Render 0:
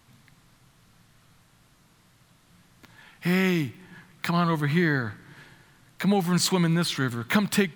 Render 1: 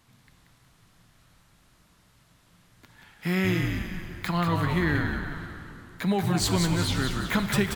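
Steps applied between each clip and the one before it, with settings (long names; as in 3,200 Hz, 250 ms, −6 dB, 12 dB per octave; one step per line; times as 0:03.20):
on a send: echo with shifted repeats 183 ms, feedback 50%, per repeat −69 Hz, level −5 dB
on the sum: dense smooth reverb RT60 3.1 s, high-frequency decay 0.8×, DRR 9.5 dB
level −3 dB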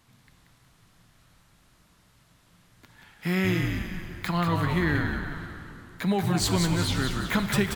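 no processing that can be heard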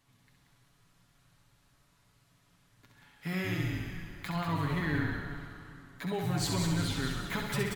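comb filter 7.1 ms, depth 48%
on a send: flutter between parallel walls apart 11.3 metres, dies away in 0.72 s
on the sum: level −9 dB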